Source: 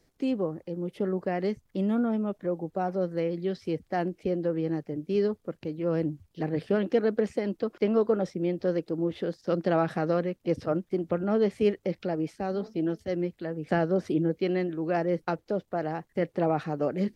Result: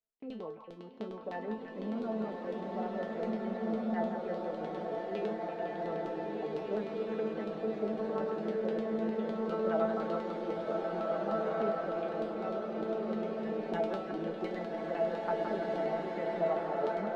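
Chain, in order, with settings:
auto-filter low-pass saw down 9.9 Hz 340–3,800 Hz
tuned comb filter 220 Hz, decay 0.3 s, harmonics all, mix 90%
echo through a band-pass that steps 168 ms, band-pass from 1,200 Hz, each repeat 0.7 octaves, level −3 dB
compressor whose output falls as the input rises −31 dBFS, ratio −1
noise gate −55 dBFS, range −22 dB
parametric band 800 Hz +7 dB 1.2 octaves
mains-hum notches 50/100/150 Hz
slow-attack reverb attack 1,840 ms, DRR −3 dB
level −4 dB

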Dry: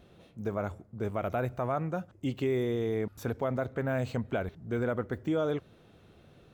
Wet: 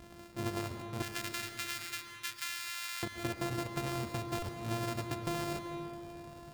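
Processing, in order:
samples sorted by size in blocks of 128 samples
0:01.02–0:03.03: high-pass filter 1,500 Hz 24 dB per octave
downward compressor, threshold −38 dBFS, peak gain reduction 11.5 dB
convolution reverb RT60 3.5 s, pre-delay 85 ms, DRR 7 dB
buffer that repeats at 0:04.39, samples 128, times 10
level +4.5 dB

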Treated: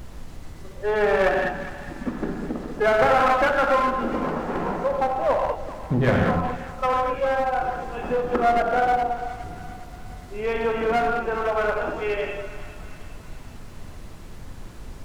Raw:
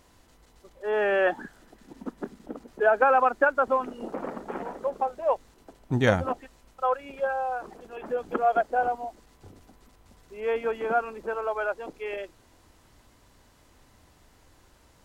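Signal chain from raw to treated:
parametric band 170 Hz +13 dB 0.28 octaves
reverb whose tail is shaped and stops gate 240 ms flat, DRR −0.5 dB
in parallel at −1.5 dB: downward compressor, threshold −26 dBFS, peak gain reduction 13 dB
on the sum: treble cut that deepens with the level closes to 2,100 Hz, closed at −16 dBFS
asymmetric clip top −20.5 dBFS
on a send: echo with a time of its own for lows and highs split 750 Hz, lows 160 ms, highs 408 ms, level −13.5 dB
on the sum: background noise brown −37 dBFS

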